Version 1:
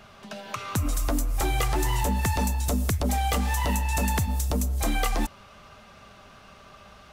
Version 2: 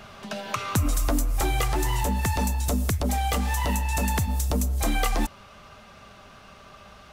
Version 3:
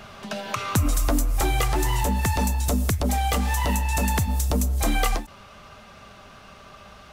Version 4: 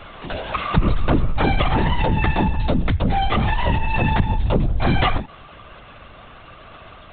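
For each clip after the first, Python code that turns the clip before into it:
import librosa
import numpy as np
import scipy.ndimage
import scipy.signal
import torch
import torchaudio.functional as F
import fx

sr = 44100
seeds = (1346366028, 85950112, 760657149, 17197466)

y1 = fx.rider(x, sr, range_db=10, speed_s=0.5)
y1 = y1 * librosa.db_to_amplitude(1.0)
y2 = fx.end_taper(y1, sr, db_per_s=200.0)
y2 = y2 * librosa.db_to_amplitude(2.0)
y3 = fx.lpc_vocoder(y2, sr, seeds[0], excitation='whisper', order=16)
y3 = y3 * librosa.db_to_amplitude(4.5)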